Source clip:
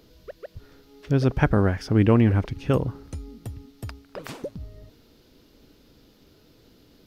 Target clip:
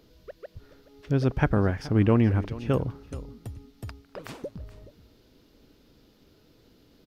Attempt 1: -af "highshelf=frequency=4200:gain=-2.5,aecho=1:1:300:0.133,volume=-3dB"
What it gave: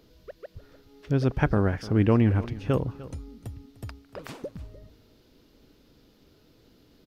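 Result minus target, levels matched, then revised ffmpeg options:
echo 124 ms early
-af "highshelf=frequency=4200:gain=-2.5,aecho=1:1:424:0.133,volume=-3dB"

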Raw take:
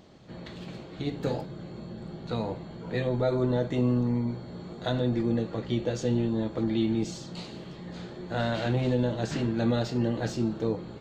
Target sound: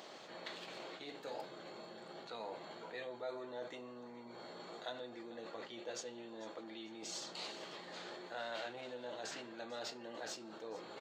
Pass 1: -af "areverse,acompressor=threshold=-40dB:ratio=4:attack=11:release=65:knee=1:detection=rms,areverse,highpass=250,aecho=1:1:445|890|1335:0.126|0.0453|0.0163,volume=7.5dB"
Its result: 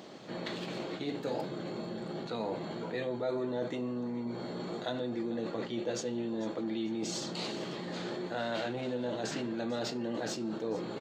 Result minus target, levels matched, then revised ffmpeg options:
250 Hz band +6.5 dB; downward compressor: peak gain reduction −6 dB
-af "areverse,acompressor=threshold=-48dB:ratio=4:attack=11:release=65:knee=1:detection=rms,areverse,highpass=600,aecho=1:1:445|890|1335:0.126|0.0453|0.0163,volume=7.5dB"

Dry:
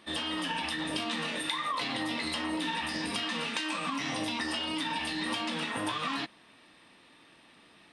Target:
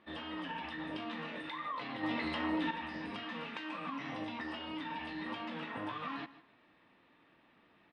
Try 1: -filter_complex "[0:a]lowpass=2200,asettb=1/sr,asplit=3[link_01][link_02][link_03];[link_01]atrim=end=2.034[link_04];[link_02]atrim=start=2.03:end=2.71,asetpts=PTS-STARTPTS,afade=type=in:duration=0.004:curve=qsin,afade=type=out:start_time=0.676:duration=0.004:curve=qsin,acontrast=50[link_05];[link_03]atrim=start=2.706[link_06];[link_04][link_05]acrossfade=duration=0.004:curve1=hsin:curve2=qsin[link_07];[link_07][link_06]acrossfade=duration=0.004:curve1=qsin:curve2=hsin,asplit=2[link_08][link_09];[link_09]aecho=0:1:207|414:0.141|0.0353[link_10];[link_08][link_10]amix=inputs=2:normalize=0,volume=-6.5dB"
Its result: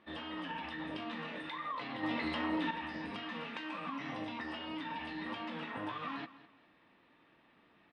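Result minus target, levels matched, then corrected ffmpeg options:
echo 57 ms late
-filter_complex "[0:a]lowpass=2200,asettb=1/sr,asplit=3[link_01][link_02][link_03];[link_01]atrim=end=2.034[link_04];[link_02]atrim=start=2.03:end=2.71,asetpts=PTS-STARTPTS,afade=type=in:duration=0.004:curve=qsin,afade=type=out:start_time=0.676:duration=0.004:curve=qsin,acontrast=50[link_05];[link_03]atrim=start=2.706[link_06];[link_04][link_05]acrossfade=duration=0.004:curve1=hsin:curve2=qsin[link_07];[link_07][link_06]acrossfade=duration=0.004:curve1=qsin:curve2=hsin,asplit=2[link_08][link_09];[link_09]aecho=0:1:150|300:0.141|0.0353[link_10];[link_08][link_10]amix=inputs=2:normalize=0,volume=-6.5dB"

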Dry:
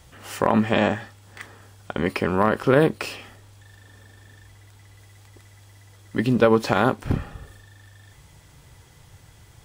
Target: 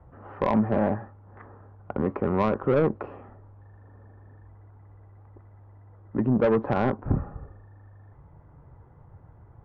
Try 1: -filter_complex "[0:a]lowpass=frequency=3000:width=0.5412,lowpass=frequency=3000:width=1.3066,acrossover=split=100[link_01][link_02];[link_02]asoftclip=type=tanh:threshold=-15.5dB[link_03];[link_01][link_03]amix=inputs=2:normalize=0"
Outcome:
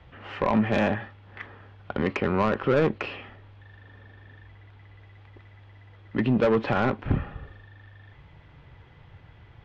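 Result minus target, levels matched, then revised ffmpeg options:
4,000 Hz band +10.5 dB
-filter_complex "[0:a]lowpass=frequency=1200:width=0.5412,lowpass=frequency=1200:width=1.3066,acrossover=split=100[link_01][link_02];[link_02]asoftclip=type=tanh:threshold=-15.5dB[link_03];[link_01][link_03]amix=inputs=2:normalize=0"

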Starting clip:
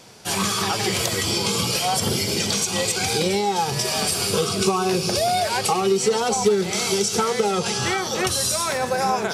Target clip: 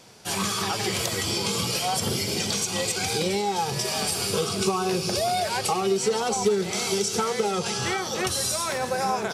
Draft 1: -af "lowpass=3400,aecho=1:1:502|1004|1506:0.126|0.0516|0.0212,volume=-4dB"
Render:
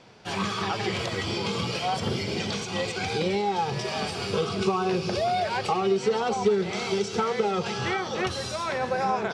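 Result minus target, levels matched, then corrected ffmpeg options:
4,000 Hz band −3.0 dB
-af "aecho=1:1:502|1004|1506:0.126|0.0516|0.0212,volume=-4dB"

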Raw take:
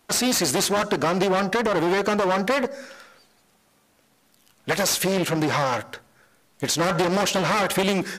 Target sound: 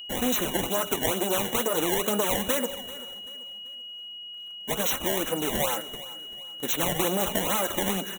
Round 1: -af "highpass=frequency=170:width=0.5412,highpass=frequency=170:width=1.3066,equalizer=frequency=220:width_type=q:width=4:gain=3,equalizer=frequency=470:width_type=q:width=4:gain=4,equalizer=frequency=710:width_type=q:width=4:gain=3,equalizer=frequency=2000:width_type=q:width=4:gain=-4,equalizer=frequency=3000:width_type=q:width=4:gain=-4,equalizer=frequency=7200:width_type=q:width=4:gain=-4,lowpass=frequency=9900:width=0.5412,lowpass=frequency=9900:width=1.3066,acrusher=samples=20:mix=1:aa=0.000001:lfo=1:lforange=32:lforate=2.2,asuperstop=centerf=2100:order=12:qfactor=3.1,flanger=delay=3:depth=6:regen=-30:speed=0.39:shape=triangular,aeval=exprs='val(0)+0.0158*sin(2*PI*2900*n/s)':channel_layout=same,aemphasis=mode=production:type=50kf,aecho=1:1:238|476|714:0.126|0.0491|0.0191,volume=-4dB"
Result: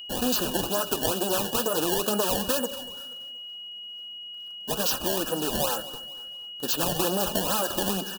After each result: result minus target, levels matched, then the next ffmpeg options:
echo 149 ms early; 2,000 Hz band −3.0 dB
-af "highpass=frequency=170:width=0.5412,highpass=frequency=170:width=1.3066,equalizer=frequency=220:width_type=q:width=4:gain=3,equalizer=frequency=470:width_type=q:width=4:gain=4,equalizer=frequency=710:width_type=q:width=4:gain=3,equalizer=frequency=2000:width_type=q:width=4:gain=-4,equalizer=frequency=3000:width_type=q:width=4:gain=-4,equalizer=frequency=7200:width_type=q:width=4:gain=-4,lowpass=frequency=9900:width=0.5412,lowpass=frequency=9900:width=1.3066,acrusher=samples=20:mix=1:aa=0.000001:lfo=1:lforange=32:lforate=2.2,asuperstop=centerf=2100:order=12:qfactor=3.1,flanger=delay=3:depth=6:regen=-30:speed=0.39:shape=triangular,aeval=exprs='val(0)+0.0158*sin(2*PI*2900*n/s)':channel_layout=same,aemphasis=mode=production:type=50kf,aecho=1:1:387|774|1161:0.126|0.0491|0.0191,volume=-4dB"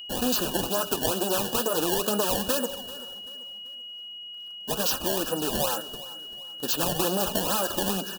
2,000 Hz band −3.0 dB
-af "highpass=frequency=170:width=0.5412,highpass=frequency=170:width=1.3066,equalizer=frequency=220:width_type=q:width=4:gain=3,equalizer=frequency=470:width_type=q:width=4:gain=4,equalizer=frequency=710:width_type=q:width=4:gain=3,equalizer=frequency=2000:width_type=q:width=4:gain=-4,equalizer=frequency=3000:width_type=q:width=4:gain=-4,equalizer=frequency=7200:width_type=q:width=4:gain=-4,lowpass=frequency=9900:width=0.5412,lowpass=frequency=9900:width=1.3066,acrusher=samples=20:mix=1:aa=0.000001:lfo=1:lforange=32:lforate=2.2,asuperstop=centerf=4800:order=12:qfactor=3.1,flanger=delay=3:depth=6:regen=-30:speed=0.39:shape=triangular,aeval=exprs='val(0)+0.0158*sin(2*PI*2900*n/s)':channel_layout=same,aemphasis=mode=production:type=50kf,aecho=1:1:387|774|1161:0.126|0.0491|0.0191,volume=-4dB"

